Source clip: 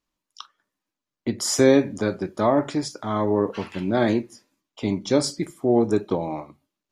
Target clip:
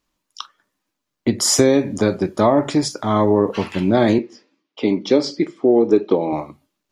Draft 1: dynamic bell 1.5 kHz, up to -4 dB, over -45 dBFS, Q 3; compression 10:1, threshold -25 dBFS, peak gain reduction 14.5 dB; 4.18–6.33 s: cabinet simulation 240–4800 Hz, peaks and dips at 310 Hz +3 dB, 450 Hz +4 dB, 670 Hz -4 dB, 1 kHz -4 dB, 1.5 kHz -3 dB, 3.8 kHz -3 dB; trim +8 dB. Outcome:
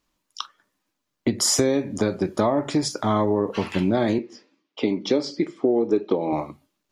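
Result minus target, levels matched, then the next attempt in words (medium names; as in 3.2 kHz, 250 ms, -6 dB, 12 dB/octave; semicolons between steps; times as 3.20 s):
compression: peak gain reduction +7 dB
dynamic bell 1.5 kHz, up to -4 dB, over -45 dBFS, Q 3; compression 10:1, threshold -17.5 dBFS, peak gain reduction 8 dB; 4.18–6.33 s: cabinet simulation 240–4800 Hz, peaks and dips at 310 Hz +3 dB, 450 Hz +4 dB, 670 Hz -4 dB, 1 kHz -4 dB, 1.5 kHz -3 dB, 3.8 kHz -3 dB; trim +8 dB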